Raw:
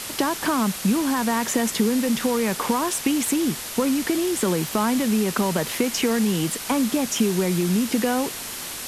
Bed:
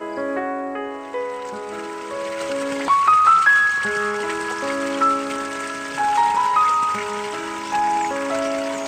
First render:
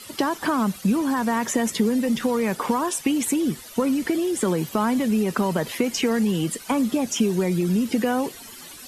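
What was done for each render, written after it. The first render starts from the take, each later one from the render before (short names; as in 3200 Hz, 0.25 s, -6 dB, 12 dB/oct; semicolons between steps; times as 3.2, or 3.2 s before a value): denoiser 14 dB, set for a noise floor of -33 dBFS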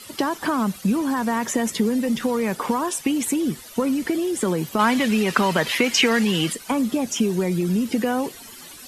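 4.79–6.53 bell 2500 Hz +11.5 dB 2.7 oct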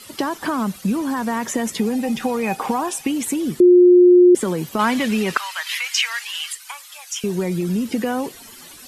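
1.76–3.05 small resonant body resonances 780/2500 Hz, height 17 dB, ringing for 0.1 s; 3.6–4.35 bleep 357 Hz -6.5 dBFS; 5.37–7.24 Bessel high-pass 1500 Hz, order 6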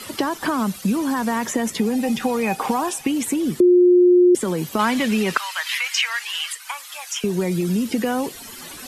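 three-band squash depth 40%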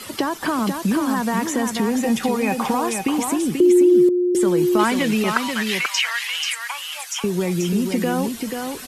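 echo 0.486 s -5.5 dB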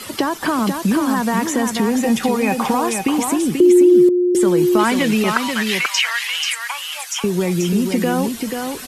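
gain +3 dB; limiter -3 dBFS, peak gain reduction 2 dB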